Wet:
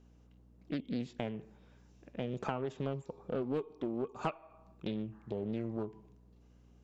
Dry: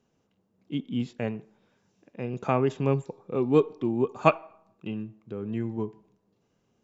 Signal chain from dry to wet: hum 60 Hz, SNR 33 dB; compression 6:1, threshold -34 dBFS, peak gain reduction 19.5 dB; spectral replace 5.15–5.43 s, 720–2100 Hz after; loudspeaker Doppler distortion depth 0.5 ms; trim +1 dB

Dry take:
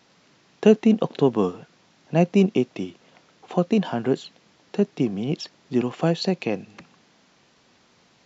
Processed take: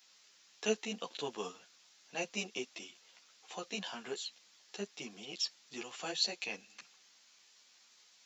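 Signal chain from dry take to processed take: differentiator; three-phase chorus; trim +6.5 dB

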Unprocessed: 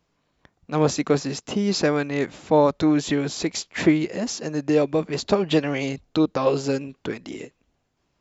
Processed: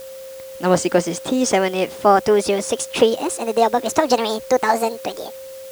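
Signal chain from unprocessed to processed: gliding tape speed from 111% -> 176%; word length cut 8-bit, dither triangular; whistle 530 Hz -37 dBFS; trim +4 dB

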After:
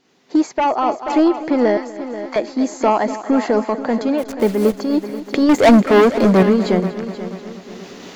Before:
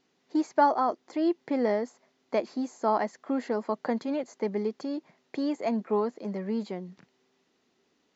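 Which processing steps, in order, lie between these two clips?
4.18–4.74 s: send-on-delta sampling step -42.5 dBFS; recorder AGC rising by 12 dB/s; 1.77–2.36 s: high-pass 1 kHz 24 dB/octave; 5.49–6.43 s: waveshaping leveller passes 3; sine folder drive 5 dB, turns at -10.5 dBFS; multi-head delay 242 ms, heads first and second, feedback 47%, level -14 dB; random flutter of the level, depth 60%; trim +5 dB

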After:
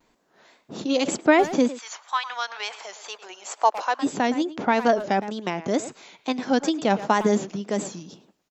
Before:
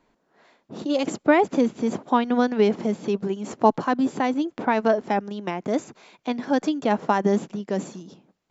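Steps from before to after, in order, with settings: 1.67–4.02 s: high-pass 1.2 kHz -> 530 Hz 24 dB/octave; speakerphone echo 110 ms, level -13 dB; wow and flutter 100 cents; treble shelf 3.4 kHz +10 dB

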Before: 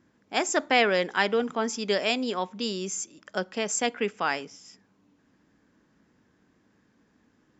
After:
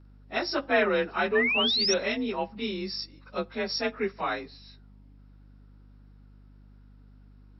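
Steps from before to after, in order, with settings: frequency axis rescaled in octaves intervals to 91%; hum 50 Hz, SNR 21 dB; painted sound rise, 1.35–1.94 s, 1.7–5.9 kHz -26 dBFS

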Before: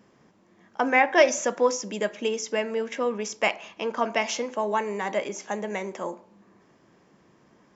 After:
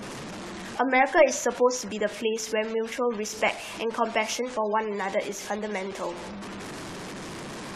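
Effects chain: one-bit delta coder 64 kbps, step -31.5 dBFS; spectral gate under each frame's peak -30 dB strong

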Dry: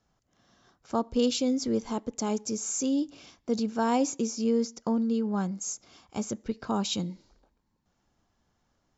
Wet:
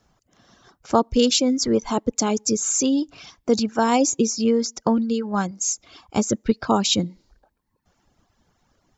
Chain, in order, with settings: reverb removal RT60 0.94 s; harmonic-percussive split percussive +5 dB; trim +7.5 dB

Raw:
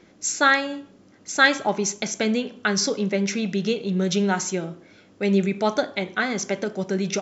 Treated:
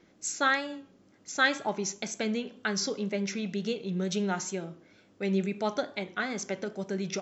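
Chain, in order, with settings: wow and flutter 47 cents; trim -8 dB

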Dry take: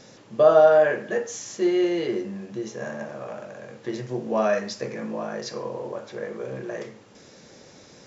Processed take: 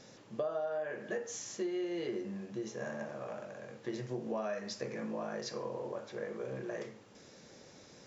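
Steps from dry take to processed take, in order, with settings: compression 10:1, threshold -26 dBFS, peak gain reduction 16 dB; trim -7 dB

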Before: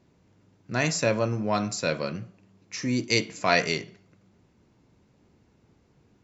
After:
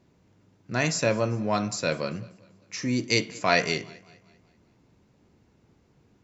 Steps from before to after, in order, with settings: modulated delay 195 ms, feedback 45%, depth 53 cents, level -23 dB

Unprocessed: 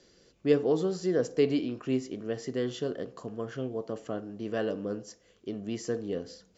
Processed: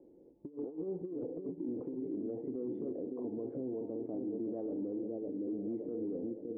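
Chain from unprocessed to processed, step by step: cascade formant filter u; peaking EQ 530 Hz +11 dB 1.2 oct; compressor with a negative ratio -35 dBFS, ratio -0.5; on a send: feedback echo behind a low-pass 565 ms, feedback 50%, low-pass 530 Hz, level -6 dB; on the sum: peak limiter -34 dBFS, peak gain reduction 12.5 dB; trim +3 dB

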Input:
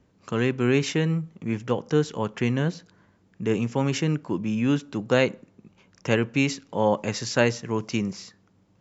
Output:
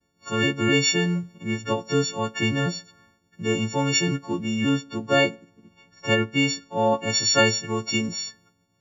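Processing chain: partials quantised in pitch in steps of 4 st; expander -55 dBFS; 4.69–7.10 s: treble shelf 3.9 kHz -8.5 dB

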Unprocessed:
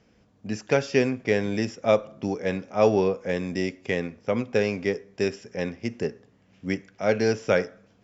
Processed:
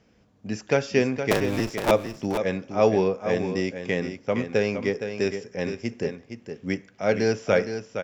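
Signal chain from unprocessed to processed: 1.31–1.91 s: cycle switcher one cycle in 2, inverted; on a send: delay 465 ms -8.5 dB

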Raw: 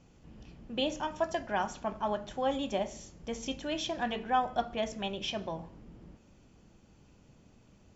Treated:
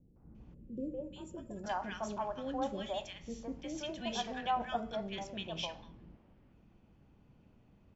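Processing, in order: three bands offset in time lows, mids, highs 160/350 ms, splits 470/1500 Hz; level-controlled noise filter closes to 2.2 kHz, open at -29 dBFS; time-frequency box 0.54–1.64 s, 590–6900 Hz -19 dB; trim -3 dB

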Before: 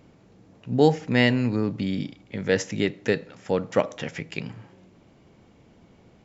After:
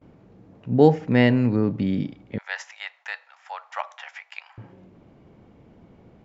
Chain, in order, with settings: 2.38–4.58 s: steep high-pass 770 Hz 48 dB/octave; gate with hold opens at -48 dBFS; low-pass 1.3 kHz 6 dB/octave; trim +3.5 dB

